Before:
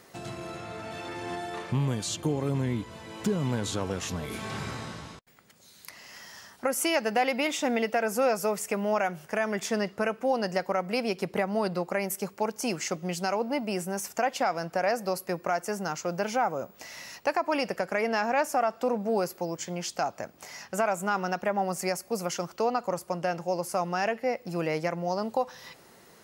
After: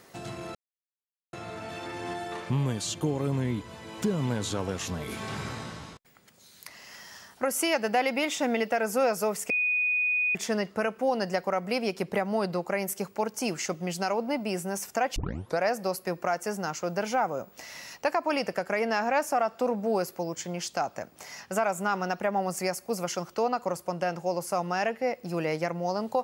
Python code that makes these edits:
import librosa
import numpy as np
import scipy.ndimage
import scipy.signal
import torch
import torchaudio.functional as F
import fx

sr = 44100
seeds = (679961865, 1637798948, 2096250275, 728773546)

y = fx.edit(x, sr, fx.insert_silence(at_s=0.55, length_s=0.78),
    fx.bleep(start_s=8.72, length_s=0.85, hz=2480.0, db=-23.0),
    fx.tape_start(start_s=14.38, length_s=0.44), tone=tone)